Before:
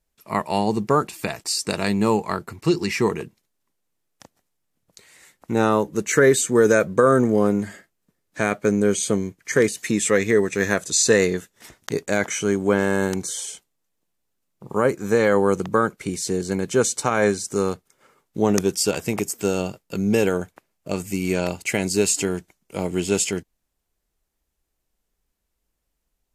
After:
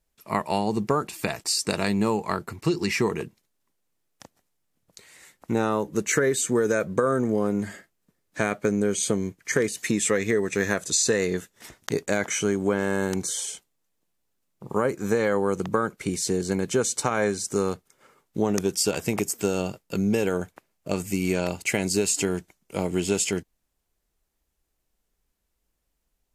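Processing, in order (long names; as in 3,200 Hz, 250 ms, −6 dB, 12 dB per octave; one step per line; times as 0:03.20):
downward compressor, threshold −19 dBFS, peak gain reduction 8.5 dB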